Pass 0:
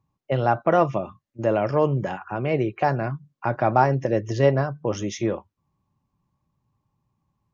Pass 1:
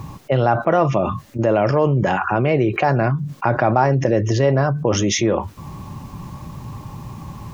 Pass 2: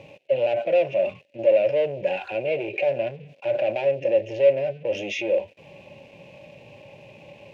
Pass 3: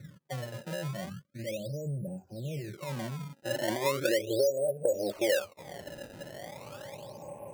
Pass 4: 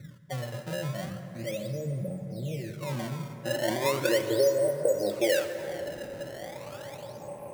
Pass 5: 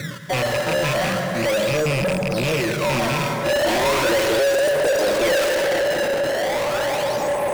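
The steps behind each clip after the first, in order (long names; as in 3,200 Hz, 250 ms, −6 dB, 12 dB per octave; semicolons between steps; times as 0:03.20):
envelope flattener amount 70%
harmonic and percussive parts rebalanced percussive −9 dB; leveller curve on the samples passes 3; pair of resonant band-passes 1,200 Hz, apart 2.2 octaves; level −1.5 dB
low-pass filter sweep 170 Hz → 1,000 Hz, 0:02.66–0:05.86; downward compressor 12 to 1, threshold −24 dBFS, peak gain reduction 16 dB; sample-and-hold swept by an LFO 22×, swing 160% 0.37 Hz
dense smooth reverb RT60 4.5 s, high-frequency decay 0.4×, DRR 7 dB; level +2 dB
loose part that buzzes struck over −34 dBFS, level −33 dBFS; mid-hump overdrive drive 35 dB, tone 6,800 Hz, clips at −12.5 dBFS; one half of a high-frequency compander encoder only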